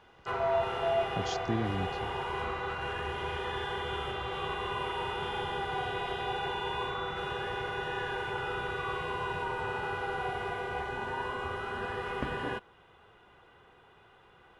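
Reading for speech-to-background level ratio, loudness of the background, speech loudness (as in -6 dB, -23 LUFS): -3.0 dB, -34.0 LUFS, -37.0 LUFS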